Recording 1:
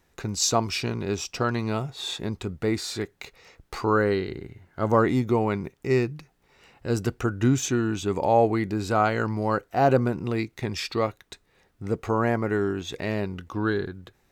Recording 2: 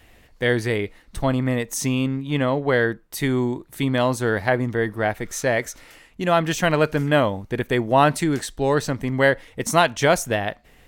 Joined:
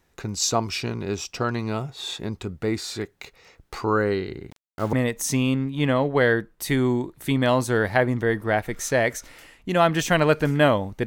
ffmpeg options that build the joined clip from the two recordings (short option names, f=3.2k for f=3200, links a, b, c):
-filter_complex "[0:a]asettb=1/sr,asplit=3[a][b][c];[a]atrim=end=4.504[d];[b]atrim=start=4.5:end=4.93,asetpts=PTS-STARTPTS,afade=t=in:d=0.004:c=qsin,afade=t=out:st=0.426:d=0.004:c=qsin,aeval=exprs='val(0)*gte(abs(val(0)),0.0141)':c=same[e];[c]atrim=start=4.926[f];[d][e]acrossfade=d=0.004:c1=hsin:c2=qsin[g];[g][f]acrossfade=d=0.004:c1=qsin:c2=hsin,apad=whole_dur=11.06,atrim=end=11.06,atrim=end=4.932[h];[1:a]atrim=start=1.448:end=7.58[i];[h][i]acrossfade=d=0.004:c1=hsin:c2=hsin"